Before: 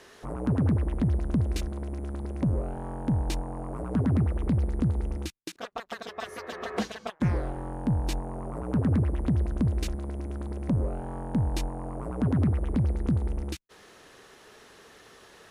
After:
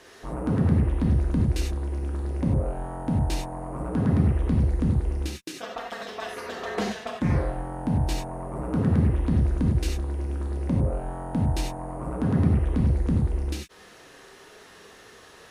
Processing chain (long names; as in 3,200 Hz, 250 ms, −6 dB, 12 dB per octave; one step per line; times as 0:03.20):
reverb whose tail is shaped and stops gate 120 ms flat, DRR −1 dB